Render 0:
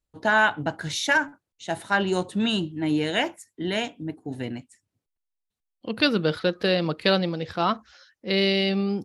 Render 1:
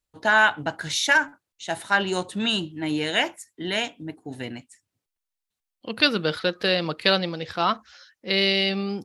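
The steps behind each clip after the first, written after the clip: tilt shelf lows -4 dB, about 700 Hz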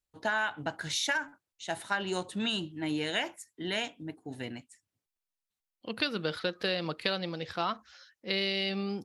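compressor 6:1, threshold -21 dBFS, peak gain reduction 8 dB; gain -5.5 dB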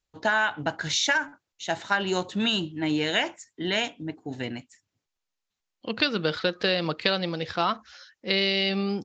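downsampling 16000 Hz; gain +6.5 dB

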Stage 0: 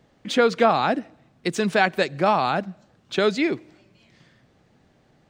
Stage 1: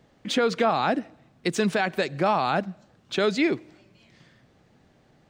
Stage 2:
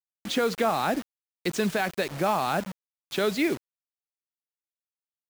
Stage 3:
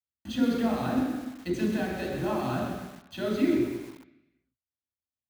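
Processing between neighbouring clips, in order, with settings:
limiter -12.5 dBFS, peak gain reduction 7.5 dB
bit-crush 6-bit; gain -2.5 dB
reverb RT60 1.0 s, pre-delay 3 ms, DRR -1.5 dB; lo-fi delay 0.126 s, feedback 35%, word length 6-bit, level -8 dB; gain -7 dB

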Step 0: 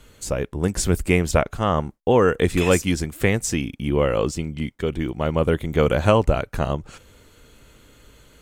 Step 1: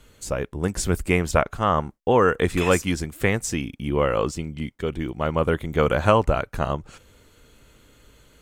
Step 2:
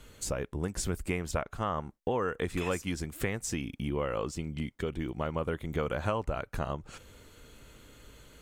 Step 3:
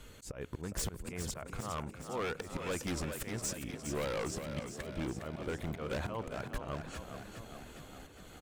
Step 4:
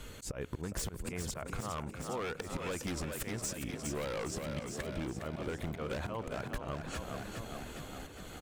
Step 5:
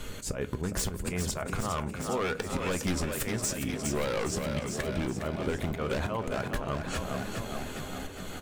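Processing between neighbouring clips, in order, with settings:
dynamic EQ 1200 Hz, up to +6 dB, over -33 dBFS, Q 0.97; gain -3 dB
compressor 3:1, threshold -32 dBFS, peak gain reduction 15 dB
auto swell 0.213 s; wavefolder -29.5 dBFS; on a send: frequency-shifting echo 0.41 s, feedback 62%, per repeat +39 Hz, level -8 dB
compressor, threshold -40 dBFS, peak gain reduction 8 dB; gain +5.5 dB
reverb RT60 0.30 s, pre-delay 5 ms, DRR 9.5 dB; gain +6.5 dB

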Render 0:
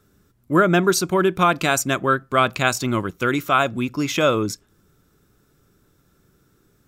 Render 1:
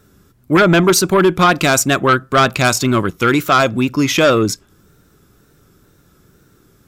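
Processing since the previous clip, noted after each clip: added harmonics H 5 -8 dB, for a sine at -2.5 dBFS; wow and flutter 61 cents; gain -1 dB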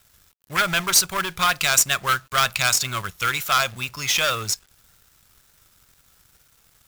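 passive tone stack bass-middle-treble 10-0-10; companded quantiser 4-bit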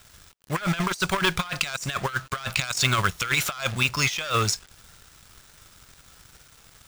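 bell 15000 Hz -13 dB 0.57 oct; negative-ratio compressor -27 dBFS, ratio -0.5; gain +2.5 dB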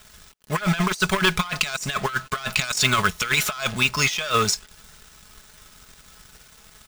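comb 4.7 ms, depth 48%; gain +2 dB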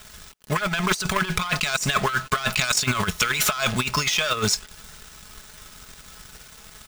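negative-ratio compressor -23 dBFS, ratio -0.5; gain +2 dB

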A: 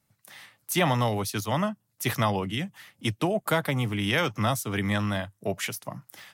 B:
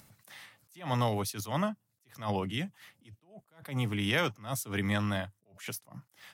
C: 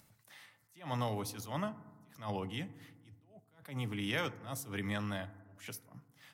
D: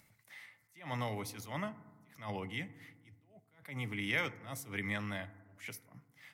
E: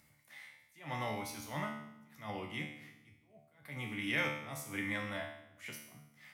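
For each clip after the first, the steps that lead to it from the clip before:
upward compressor, threshold -42 dBFS; attack slew limiter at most 160 dB/s; gain -3.5 dB
FDN reverb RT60 1.3 s, low-frequency decay 1.4×, high-frequency decay 0.25×, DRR 14 dB; gain -6.5 dB
bell 2100 Hz +11.5 dB 0.33 oct; gain -2.5 dB
resonator 74 Hz, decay 0.76 s, harmonics all, mix 90%; gain +11.5 dB

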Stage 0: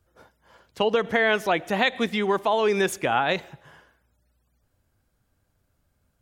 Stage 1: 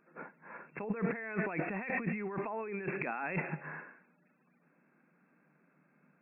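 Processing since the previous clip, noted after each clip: FFT band-pass 140–2700 Hz; bell 640 Hz -7 dB 1.3 oct; negative-ratio compressor -37 dBFS, ratio -1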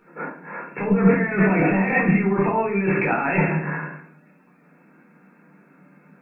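shoebox room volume 450 m³, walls furnished, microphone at 4.3 m; gain +8.5 dB

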